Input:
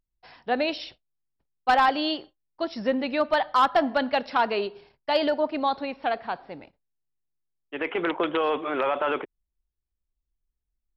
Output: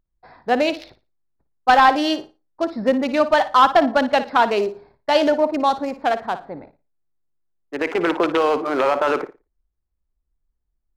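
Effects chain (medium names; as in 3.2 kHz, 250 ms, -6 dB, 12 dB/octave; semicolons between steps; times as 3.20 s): local Wiener filter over 15 samples; on a send: flutter echo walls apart 9.8 m, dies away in 0.26 s; on the sum: trim +7 dB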